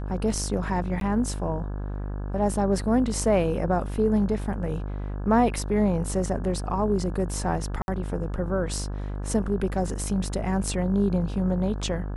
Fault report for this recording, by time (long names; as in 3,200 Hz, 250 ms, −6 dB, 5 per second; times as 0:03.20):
mains buzz 50 Hz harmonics 34 −31 dBFS
0:01.00–0:01.01: drop-out 12 ms
0:07.82–0:07.88: drop-out 61 ms